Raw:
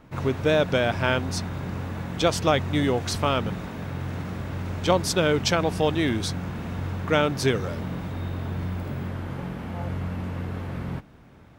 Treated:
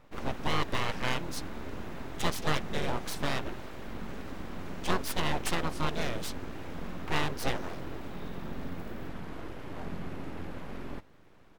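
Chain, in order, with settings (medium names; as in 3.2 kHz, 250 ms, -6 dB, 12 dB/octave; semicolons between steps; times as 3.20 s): harmony voices -3 st -9 dB; full-wave rectifier; trim -6 dB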